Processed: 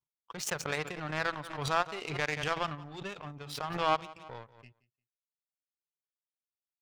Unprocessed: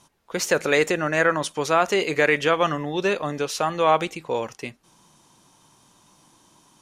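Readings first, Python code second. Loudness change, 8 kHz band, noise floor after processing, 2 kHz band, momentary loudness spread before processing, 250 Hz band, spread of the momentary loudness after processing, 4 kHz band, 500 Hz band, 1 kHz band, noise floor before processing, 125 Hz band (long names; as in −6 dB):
−11.5 dB, −10.5 dB, below −85 dBFS, −12.0 dB, 9 LU, −14.5 dB, 15 LU, −9.0 dB, −16.0 dB, −10.0 dB, −59 dBFS, −7.5 dB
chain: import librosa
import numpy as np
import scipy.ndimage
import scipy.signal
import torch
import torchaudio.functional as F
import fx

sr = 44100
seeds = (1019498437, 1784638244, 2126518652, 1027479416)

p1 = fx.lowpass(x, sr, hz=3800.0, slope=6)
p2 = fx.noise_reduce_blind(p1, sr, reduce_db=17)
p3 = fx.graphic_eq(p2, sr, hz=(125, 250, 500, 2000), db=(10, -7, -8, -5))
p4 = fx.power_curve(p3, sr, exponent=2.0)
p5 = p4 + fx.echo_feedback(p4, sr, ms=175, feedback_pct=19, wet_db=-21, dry=0)
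p6 = fx.pre_swell(p5, sr, db_per_s=58.0)
y = p6 * 10.0 ** (-1.5 / 20.0)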